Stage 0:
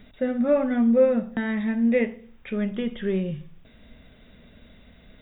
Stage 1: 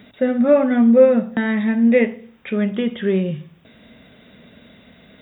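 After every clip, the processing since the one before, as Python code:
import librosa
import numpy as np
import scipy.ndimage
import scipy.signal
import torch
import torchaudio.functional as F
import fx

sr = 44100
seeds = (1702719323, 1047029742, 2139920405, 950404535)

y = scipy.signal.sosfilt(scipy.signal.butter(2, 130.0, 'highpass', fs=sr, output='sos'), x)
y = y * 10.0 ** (7.0 / 20.0)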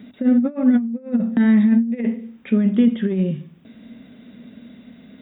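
y = fx.over_compress(x, sr, threshold_db=-19.0, ratio=-0.5)
y = fx.peak_eq(y, sr, hz=240.0, db=14.0, octaves=0.87)
y = y * 10.0 ** (-8.5 / 20.0)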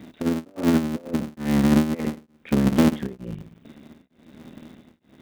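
y = fx.cycle_switch(x, sr, every=3, mode='muted')
y = y * np.abs(np.cos(np.pi * 1.1 * np.arange(len(y)) / sr))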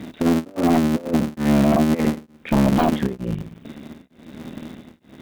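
y = fx.fold_sine(x, sr, drive_db=9, ceiling_db=-7.0)
y = y * 10.0 ** (-4.5 / 20.0)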